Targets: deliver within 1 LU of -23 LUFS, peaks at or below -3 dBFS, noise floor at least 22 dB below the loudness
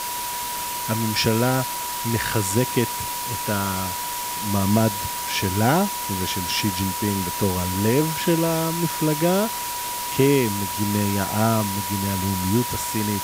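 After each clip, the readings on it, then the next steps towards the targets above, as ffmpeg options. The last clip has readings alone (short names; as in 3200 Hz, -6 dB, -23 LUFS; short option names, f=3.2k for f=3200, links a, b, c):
steady tone 970 Hz; tone level -29 dBFS; noise floor -29 dBFS; noise floor target -45 dBFS; loudness -22.5 LUFS; peak -4.0 dBFS; loudness target -23.0 LUFS
-> -af "bandreject=f=970:w=30"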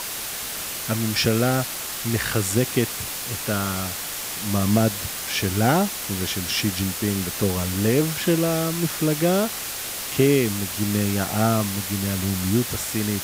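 steady tone none; noise floor -31 dBFS; noise floor target -45 dBFS
-> -af "afftdn=nr=14:nf=-31"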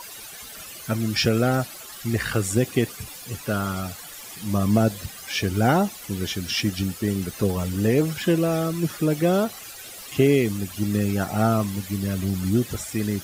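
noise floor -40 dBFS; noise floor target -46 dBFS
-> -af "afftdn=nr=6:nf=-40"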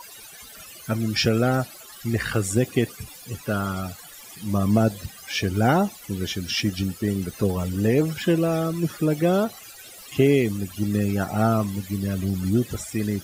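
noise floor -44 dBFS; noise floor target -46 dBFS
-> -af "afftdn=nr=6:nf=-44"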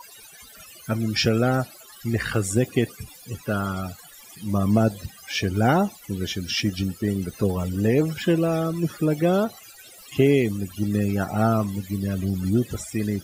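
noise floor -47 dBFS; loudness -24.0 LUFS; peak -5.5 dBFS; loudness target -23.0 LUFS
-> -af "volume=1dB"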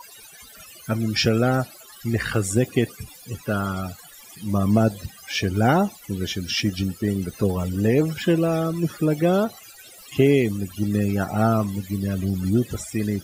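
loudness -23.0 LUFS; peak -4.5 dBFS; noise floor -46 dBFS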